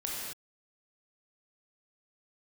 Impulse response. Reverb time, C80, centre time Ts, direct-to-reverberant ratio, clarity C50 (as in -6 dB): not exponential, 0.0 dB, 96 ms, -4.5 dB, -2.0 dB